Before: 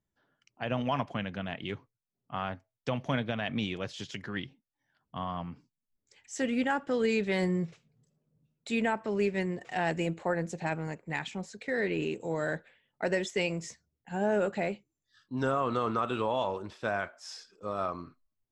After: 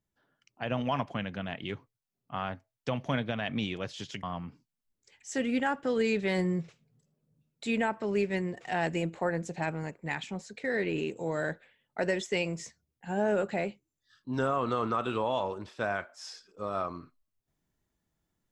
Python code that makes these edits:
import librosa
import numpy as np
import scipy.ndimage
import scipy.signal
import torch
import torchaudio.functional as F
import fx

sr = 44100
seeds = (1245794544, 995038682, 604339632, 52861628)

y = fx.edit(x, sr, fx.cut(start_s=4.23, length_s=1.04), tone=tone)